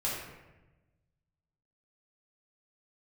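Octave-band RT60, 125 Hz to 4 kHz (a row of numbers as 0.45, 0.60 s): 1.8, 1.4, 1.2, 1.0, 1.0, 0.70 s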